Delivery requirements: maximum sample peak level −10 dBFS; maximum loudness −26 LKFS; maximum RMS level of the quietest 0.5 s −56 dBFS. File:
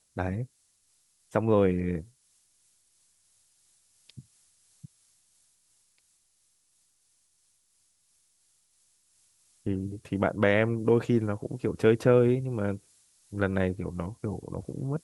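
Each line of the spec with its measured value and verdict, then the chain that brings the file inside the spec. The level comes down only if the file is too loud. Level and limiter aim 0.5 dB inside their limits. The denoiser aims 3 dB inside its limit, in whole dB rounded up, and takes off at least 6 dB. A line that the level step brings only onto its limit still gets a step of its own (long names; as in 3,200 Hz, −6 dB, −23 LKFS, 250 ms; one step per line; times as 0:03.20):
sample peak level −9.0 dBFS: out of spec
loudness −28.0 LKFS: in spec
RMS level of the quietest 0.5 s −70 dBFS: in spec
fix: brickwall limiter −10.5 dBFS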